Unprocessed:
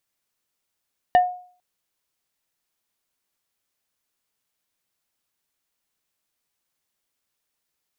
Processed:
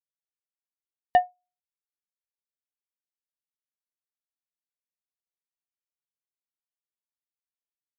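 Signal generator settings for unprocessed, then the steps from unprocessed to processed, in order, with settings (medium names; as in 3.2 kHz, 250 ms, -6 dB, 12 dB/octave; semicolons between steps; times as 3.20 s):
wood hit plate, lowest mode 723 Hz, decay 0.47 s, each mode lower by 10.5 dB, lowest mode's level -9 dB
upward expansion 2.5:1, over -37 dBFS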